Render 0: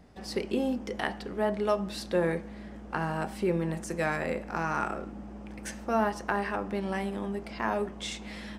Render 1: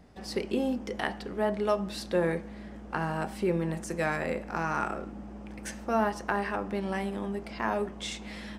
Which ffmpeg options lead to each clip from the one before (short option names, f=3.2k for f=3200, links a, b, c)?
-af anull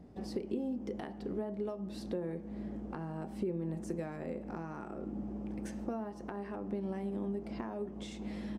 -af "lowshelf=f=78:g=-10.5,acompressor=threshold=-37dB:ratio=6,firequalizer=gain_entry='entry(350,0);entry(500,-5);entry(950,-10);entry(1500,-15)':delay=0.05:min_phase=1,volume=5dB"